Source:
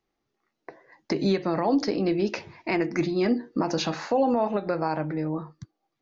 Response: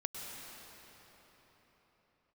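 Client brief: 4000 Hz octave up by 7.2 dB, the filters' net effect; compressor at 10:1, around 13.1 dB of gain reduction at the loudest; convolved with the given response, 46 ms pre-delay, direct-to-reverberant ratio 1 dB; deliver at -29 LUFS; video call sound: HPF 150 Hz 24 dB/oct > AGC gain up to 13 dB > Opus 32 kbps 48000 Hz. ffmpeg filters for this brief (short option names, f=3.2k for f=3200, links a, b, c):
-filter_complex "[0:a]equalizer=f=4k:t=o:g=8.5,acompressor=threshold=-32dB:ratio=10,asplit=2[a][b];[1:a]atrim=start_sample=2205,adelay=46[c];[b][c]afir=irnorm=-1:irlink=0,volume=-2dB[d];[a][d]amix=inputs=2:normalize=0,highpass=f=150:w=0.5412,highpass=f=150:w=1.3066,dynaudnorm=m=13dB,volume=6dB" -ar 48000 -c:a libopus -b:a 32k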